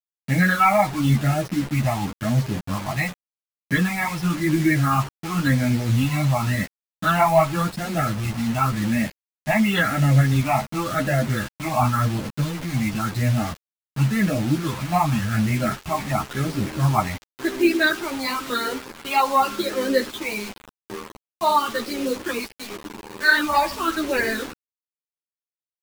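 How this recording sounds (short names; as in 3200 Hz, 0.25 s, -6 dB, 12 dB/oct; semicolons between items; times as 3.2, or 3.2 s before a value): phasing stages 8, 0.92 Hz, lowest notch 430–1100 Hz; a quantiser's noise floor 6-bit, dither none; a shimmering, thickened sound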